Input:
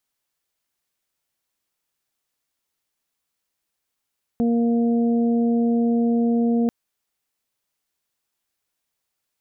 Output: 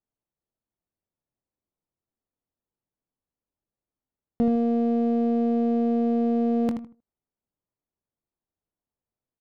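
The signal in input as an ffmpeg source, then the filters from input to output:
-f lavfi -i "aevalsrc='0.141*sin(2*PI*234*t)+0.0531*sin(2*PI*468*t)+0.0224*sin(2*PI*702*t)':d=2.29:s=44100"
-filter_complex "[0:a]asplit=2[s0][s1];[s1]aecho=0:1:78|156|234:0.376|0.101|0.0274[s2];[s0][s2]amix=inputs=2:normalize=0,adynamicsmooth=sensitivity=6.5:basefreq=640,asplit=2[s3][s4];[s4]aecho=0:1:23|79:0.237|0.168[s5];[s3][s5]amix=inputs=2:normalize=0"

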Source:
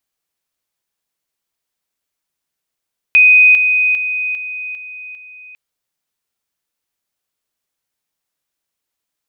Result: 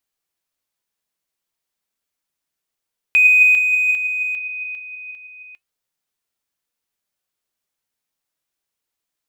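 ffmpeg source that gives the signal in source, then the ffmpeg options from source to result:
-f lavfi -i "aevalsrc='pow(10,(-4.5-6*floor(t/0.4))/20)*sin(2*PI*2500*t)':d=2.4:s=44100"
-filter_complex "[0:a]asplit=2[s0][s1];[s1]asoftclip=type=hard:threshold=0.119,volume=0.282[s2];[s0][s2]amix=inputs=2:normalize=0,flanger=delay=2:depth=3.7:regen=86:speed=0.34:shape=triangular"

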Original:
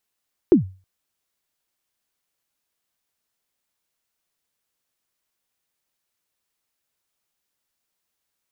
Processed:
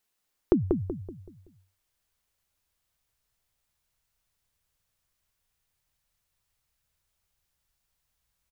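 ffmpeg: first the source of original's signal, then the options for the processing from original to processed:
-f lavfi -i "aevalsrc='0.531*pow(10,-3*t/0.34)*sin(2*PI*(400*0.118/log(94/400)*(exp(log(94/400)*min(t,0.118)/0.118)-1)+94*max(t-0.118,0)))':d=0.32:s=44100"
-filter_complex "[0:a]acompressor=threshold=0.126:ratio=6,asplit=2[s0][s1];[s1]adelay=189,lowpass=f=1000:p=1,volume=0.668,asplit=2[s2][s3];[s3]adelay=189,lowpass=f=1000:p=1,volume=0.41,asplit=2[s4][s5];[s5]adelay=189,lowpass=f=1000:p=1,volume=0.41,asplit=2[s6][s7];[s7]adelay=189,lowpass=f=1000:p=1,volume=0.41,asplit=2[s8][s9];[s9]adelay=189,lowpass=f=1000:p=1,volume=0.41[s10];[s0][s2][s4][s6][s8][s10]amix=inputs=6:normalize=0,asubboost=boost=9.5:cutoff=92"

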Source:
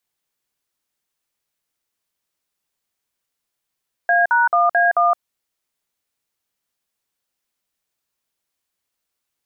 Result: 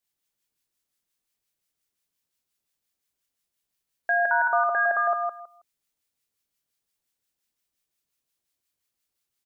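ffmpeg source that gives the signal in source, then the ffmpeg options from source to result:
-f lavfi -i "aevalsrc='0.178*clip(min(mod(t,0.219),0.167-mod(t,0.219))/0.002,0,1)*(eq(floor(t/0.219),0)*(sin(2*PI*697*mod(t,0.219))+sin(2*PI*1633*mod(t,0.219)))+eq(floor(t/0.219),1)*(sin(2*PI*941*mod(t,0.219))+sin(2*PI*1477*mod(t,0.219)))+eq(floor(t/0.219),2)*(sin(2*PI*697*mod(t,0.219))+sin(2*PI*1209*mod(t,0.219)))+eq(floor(t/0.219),3)*(sin(2*PI*697*mod(t,0.219))+sin(2*PI*1633*mod(t,0.219)))+eq(floor(t/0.219),4)*(sin(2*PI*697*mod(t,0.219))+sin(2*PI*1209*mod(t,0.219))))':d=1.095:s=44100"
-filter_complex "[0:a]equalizer=f=970:w=0.51:g=-5.5,acrossover=split=1100[s0][s1];[s0]aeval=exprs='val(0)*(1-0.5/2+0.5/2*cos(2*PI*5.7*n/s))':c=same[s2];[s1]aeval=exprs='val(0)*(1-0.5/2-0.5/2*cos(2*PI*5.7*n/s))':c=same[s3];[s2][s3]amix=inputs=2:normalize=0,asplit=2[s4][s5];[s5]aecho=0:1:161|322|483:0.596|0.113|0.0215[s6];[s4][s6]amix=inputs=2:normalize=0"

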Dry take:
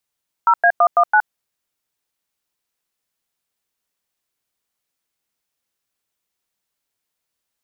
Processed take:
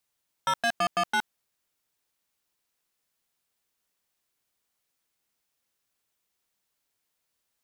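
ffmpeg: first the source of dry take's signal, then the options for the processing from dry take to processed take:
-f lavfi -i "aevalsrc='0.251*clip(min(mod(t,0.166),0.068-mod(t,0.166))/0.002,0,1)*(eq(floor(t/0.166),0)*(sin(2*PI*941*mod(t,0.166))+sin(2*PI*1336*mod(t,0.166)))+eq(floor(t/0.166),1)*(sin(2*PI*697*mod(t,0.166))+sin(2*PI*1633*mod(t,0.166)))+eq(floor(t/0.166),2)*(sin(2*PI*697*mod(t,0.166))+sin(2*PI*1209*mod(t,0.166)))+eq(floor(t/0.166),3)*(sin(2*PI*697*mod(t,0.166))+sin(2*PI*1209*mod(t,0.166)))+eq(floor(t/0.166),4)*(sin(2*PI*852*mod(t,0.166))+sin(2*PI*1477*mod(t,0.166))))':d=0.83:s=44100"
-af "asoftclip=type=tanh:threshold=0.0708"

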